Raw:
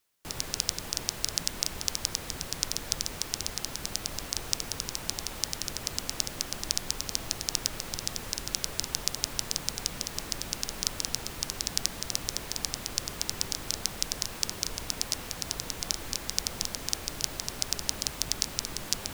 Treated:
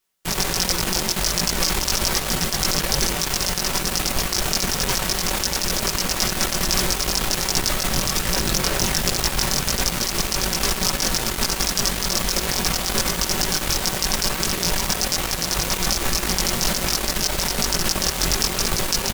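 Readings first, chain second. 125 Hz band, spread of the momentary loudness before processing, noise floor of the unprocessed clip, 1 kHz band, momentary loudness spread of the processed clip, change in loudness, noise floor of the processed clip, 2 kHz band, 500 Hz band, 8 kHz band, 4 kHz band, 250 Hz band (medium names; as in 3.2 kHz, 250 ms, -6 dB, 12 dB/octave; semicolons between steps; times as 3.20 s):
+14.5 dB, 4 LU, -42 dBFS, +16.0 dB, 2 LU, +11.0 dB, -27 dBFS, +15.0 dB, +15.5 dB, +9.5 dB, +10.0 dB, +16.0 dB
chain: comb 5.3 ms, depth 45%; chorus voices 4, 1.3 Hz, delay 20 ms, depth 3.4 ms; in parallel at -7 dB: fuzz box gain 45 dB, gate -40 dBFS; on the sum: trim +4 dB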